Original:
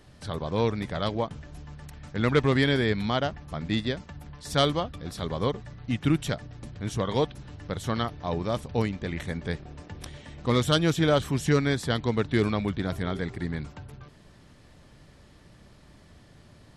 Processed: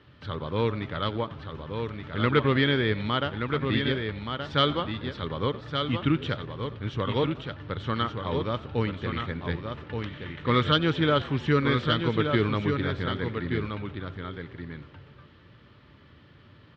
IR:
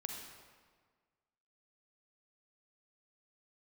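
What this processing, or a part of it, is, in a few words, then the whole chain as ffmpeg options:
frequency-shifting delay pedal into a guitar cabinet: -filter_complex "[0:a]asplit=6[link_01][link_02][link_03][link_04][link_05][link_06];[link_02]adelay=92,afreqshift=97,volume=-19.5dB[link_07];[link_03]adelay=184,afreqshift=194,volume=-24.2dB[link_08];[link_04]adelay=276,afreqshift=291,volume=-29dB[link_09];[link_05]adelay=368,afreqshift=388,volume=-33.7dB[link_10];[link_06]adelay=460,afreqshift=485,volume=-38.4dB[link_11];[link_01][link_07][link_08][link_09][link_10][link_11]amix=inputs=6:normalize=0,highpass=83,equalizer=frequency=95:width_type=q:width=4:gain=4,equalizer=frequency=190:width_type=q:width=4:gain=-5,equalizer=frequency=710:width_type=q:width=4:gain=-10,equalizer=frequency=1300:width_type=q:width=4:gain=5,equalizer=frequency=3100:width_type=q:width=4:gain=4,lowpass=frequency=3700:width=0.5412,lowpass=frequency=3700:width=1.3066,asettb=1/sr,asplit=3[link_12][link_13][link_14];[link_12]atrim=end=9.664[link_15];[link_13]atrim=start=9.66:end=10.72,asetpts=PTS-STARTPTS,afade=type=in:duration=0.004:curve=qsin,afade=type=out:start_time=1.056:duration=0.004:curve=qsin,equalizer=frequency=1700:width_type=o:width=1.3:gain=5[link_16];[link_14]atrim=start=10.716[link_17];[link_15][link_16]acrossfade=duration=0.004:curve1=hsin:curve2=qsin[link_18];[link_18][link_17]acrossfade=duration=0.004:curve1=qsin:curve2=hsin,aecho=1:1:1175:0.501"

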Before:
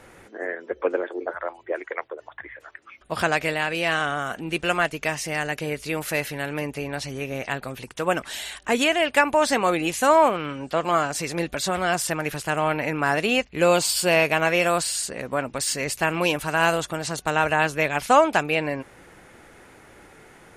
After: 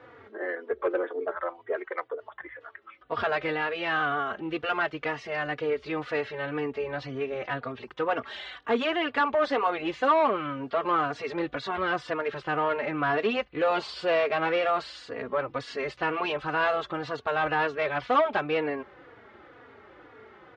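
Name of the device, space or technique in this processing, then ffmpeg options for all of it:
barber-pole flanger into a guitar amplifier: -filter_complex "[0:a]asplit=2[link_01][link_02];[link_02]adelay=3.5,afreqshift=-2[link_03];[link_01][link_03]amix=inputs=2:normalize=1,asoftclip=type=tanh:threshold=-19.5dB,highpass=81,equalizer=frequency=170:width_type=q:width=4:gain=-10,equalizer=frequency=440:width_type=q:width=4:gain=5,equalizer=frequency=1200:width_type=q:width=4:gain=6,equalizer=frequency=2500:width_type=q:width=4:gain=-5,lowpass=frequency=3600:width=0.5412,lowpass=frequency=3600:width=1.3066"

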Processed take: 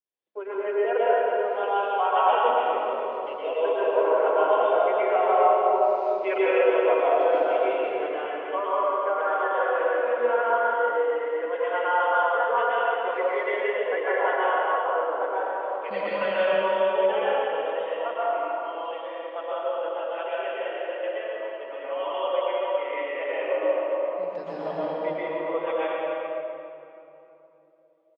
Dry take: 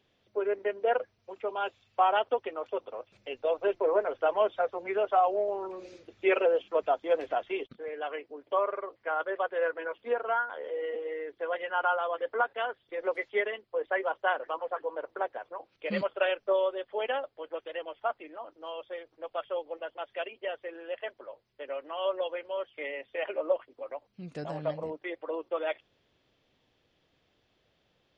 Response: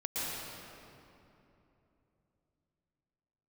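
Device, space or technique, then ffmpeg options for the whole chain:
station announcement: -filter_complex "[0:a]agate=range=-33dB:threshold=-56dB:ratio=3:detection=peak,highpass=310,lowpass=4100,equalizer=frequency=1000:width_type=o:width=0.32:gain=4.5,aecho=1:1:195.3|282.8:0.251|0.355[link_01];[1:a]atrim=start_sample=2205[link_02];[link_01][link_02]afir=irnorm=-1:irlink=0,asplit=3[link_03][link_04][link_05];[link_03]afade=type=out:start_time=2.48:duration=0.02[link_06];[link_04]asubboost=boost=5:cutoff=190,afade=type=in:start_time=2.48:duration=0.02,afade=type=out:start_time=3.44:duration=0.02[link_07];[link_05]afade=type=in:start_time=3.44:duration=0.02[link_08];[link_06][link_07][link_08]amix=inputs=3:normalize=0"

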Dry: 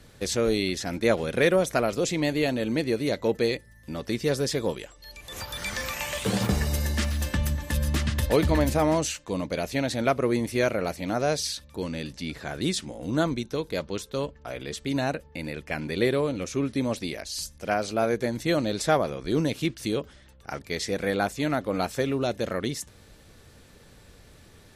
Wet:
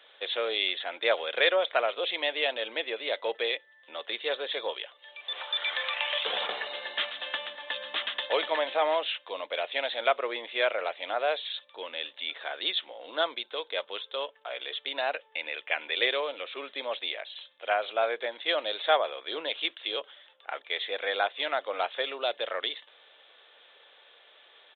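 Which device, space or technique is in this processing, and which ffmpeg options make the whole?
musical greeting card: -filter_complex "[0:a]aresample=8000,aresample=44100,highpass=frequency=550:width=0.5412,highpass=frequency=550:width=1.3066,equalizer=frequency=3400:width_type=o:width=0.5:gain=10,asettb=1/sr,asplit=3[link_01][link_02][link_03];[link_01]atrim=end=15.134[link_04];[link_02]atrim=start=15.13:end=16.25,asetpts=PTS-STARTPTS,afade=type=in:duration=0.004:curve=qsin,afade=type=out:start_time=1.116:duration=0.004:curve=qsin,equalizer=frequency=2500:width_type=o:width=0.88:gain=4[link_05];[link_03]atrim=start=16.246[link_06];[link_04][link_05]acrossfade=duration=0.004:curve1=hsin:curve2=qsin[link_07];[link_07][link_06]acrossfade=duration=0.004:curve1=qsin:curve2=hsin"

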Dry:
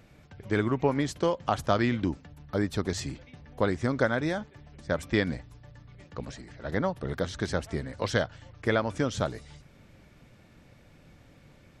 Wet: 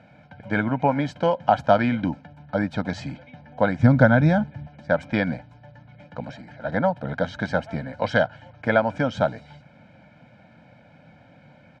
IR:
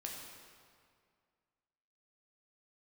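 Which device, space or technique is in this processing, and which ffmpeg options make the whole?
phone in a pocket: -filter_complex "[0:a]highpass=190,lowpass=3600,highshelf=frequency=2000:gain=-8,asettb=1/sr,asplit=3[link_01][link_02][link_03];[link_01]atrim=end=3.794[link_04];[link_02]atrim=start=3.79:end=4.67,asetpts=PTS-STARTPTS,afade=type=in:duration=0.004:curve=qsin,afade=type=out:start_time=0.876:duration=0.004:curve=qsin,bass=frequency=250:gain=14,treble=frequency=4000:gain=3[link_05];[link_03]atrim=start=4.666[link_06];[link_04][link_05]acrossfade=duration=0.004:curve1=hsin:curve2=qsin[link_07];[link_07][link_06]acrossfade=duration=0.004:curve1=qsin:curve2=hsin,aecho=1:1:1.3:0.94,volume=6.5dB"

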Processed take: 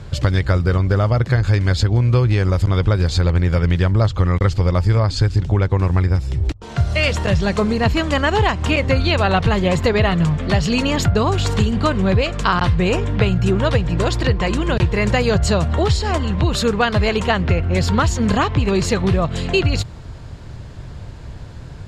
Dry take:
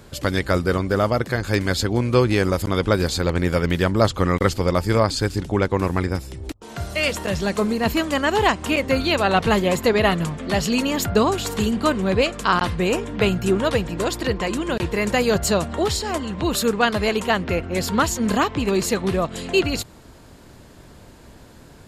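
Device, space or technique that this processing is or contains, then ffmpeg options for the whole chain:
jukebox: -af "lowpass=5900,lowshelf=frequency=170:width_type=q:width=1.5:gain=9,acompressor=threshold=-17dB:ratio=6,volume=5dB"

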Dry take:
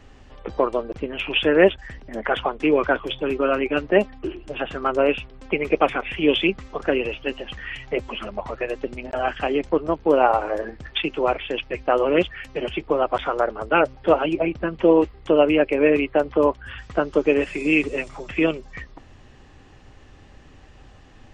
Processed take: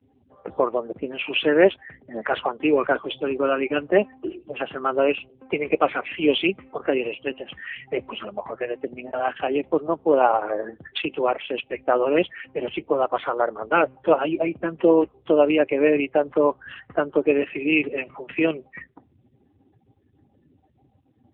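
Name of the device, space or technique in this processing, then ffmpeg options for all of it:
mobile call with aggressive noise cancelling: -af "highpass=frequency=160:poles=1,afftdn=noise_reduction=31:noise_floor=-44" -ar 8000 -c:a libopencore_amrnb -b:a 7950

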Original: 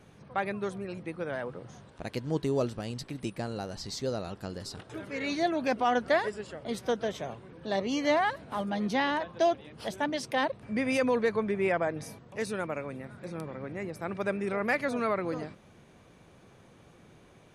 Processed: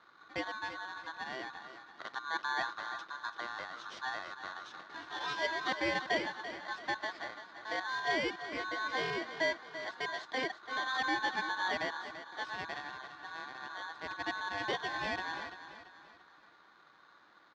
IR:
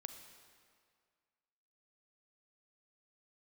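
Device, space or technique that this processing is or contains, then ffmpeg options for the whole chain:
ring modulator pedal into a guitar cabinet: -filter_complex "[0:a]asettb=1/sr,asplit=3[link_01][link_02][link_03];[link_01]atrim=end=4.944[link_04];[link_02]atrim=start=4.94:end=5.85,asetpts=PTS-STARTPTS,afade=type=in:duration=0.004:curve=qsin,afade=type=out:start_time=0.906:duration=0.004:curve=qsin,highshelf=frequency=2700:gain=10[link_05];[link_03]atrim=start=5.846[link_06];[link_04][link_05]acrossfade=duration=0.004:curve1=hsin:curve2=qsin[link_07];[link_07][link_06]acrossfade=duration=0.004:curve1=qsin:curve2=hsin,aeval=exprs='val(0)*sgn(sin(2*PI*1300*n/s))':channel_layout=same,highpass=94,equalizer=frequency=98:width_type=q:width=4:gain=-8,equalizer=frequency=330:width_type=q:width=4:gain=9,equalizer=frequency=1300:width_type=q:width=4:gain=4,equalizer=frequency=2700:width_type=q:width=4:gain=-6,lowpass=frequency=4500:width=0.5412,lowpass=frequency=4500:width=1.3066,aecho=1:1:338|676|1014|1352:0.266|0.112|0.0469|0.0197,volume=-7dB"

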